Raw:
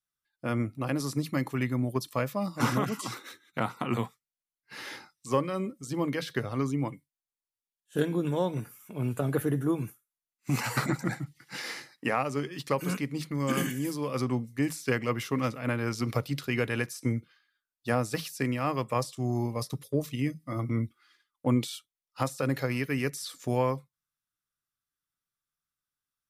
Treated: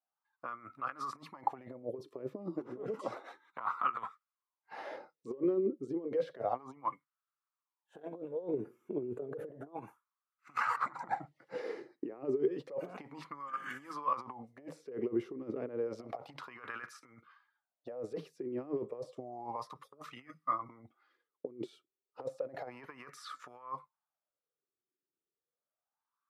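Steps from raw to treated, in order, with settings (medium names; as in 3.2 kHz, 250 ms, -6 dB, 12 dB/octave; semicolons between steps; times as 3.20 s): high-pass 54 Hz 6 dB/octave; compressor with a negative ratio -34 dBFS, ratio -0.5; wah-wah 0.31 Hz 360–1300 Hz, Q 6.8; trim +10.5 dB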